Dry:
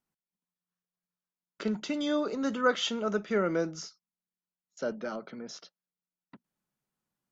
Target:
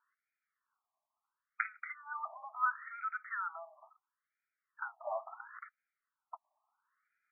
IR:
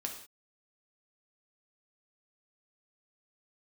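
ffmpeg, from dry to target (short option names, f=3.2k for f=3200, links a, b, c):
-af "acompressor=threshold=-43dB:ratio=5,afftfilt=real='re*between(b*sr/1024,840*pow(1800/840,0.5+0.5*sin(2*PI*0.73*pts/sr))/1.41,840*pow(1800/840,0.5+0.5*sin(2*PI*0.73*pts/sr))*1.41)':imag='im*between(b*sr/1024,840*pow(1800/840,0.5+0.5*sin(2*PI*0.73*pts/sr))/1.41,840*pow(1800/840,0.5+0.5*sin(2*PI*0.73*pts/sr))*1.41)':win_size=1024:overlap=0.75,volume=15dB"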